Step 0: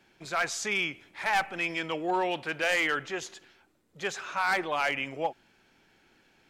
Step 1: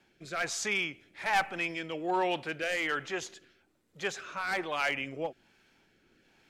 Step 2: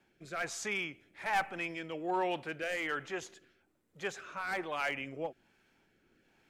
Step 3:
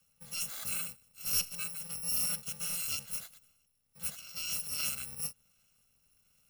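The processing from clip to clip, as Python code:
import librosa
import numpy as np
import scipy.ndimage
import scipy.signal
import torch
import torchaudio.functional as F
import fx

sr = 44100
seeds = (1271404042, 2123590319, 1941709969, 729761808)

y1 = fx.rotary(x, sr, hz=1.2)
y2 = fx.peak_eq(y1, sr, hz=4400.0, db=-5.0, octaves=1.5)
y2 = y2 * 10.0 ** (-3.0 / 20.0)
y3 = fx.bit_reversed(y2, sr, seeds[0], block=128)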